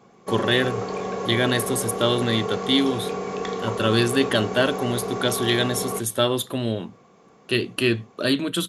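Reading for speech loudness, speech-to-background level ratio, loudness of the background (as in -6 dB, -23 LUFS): -23.5 LUFS, 5.5 dB, -29.0 LUFS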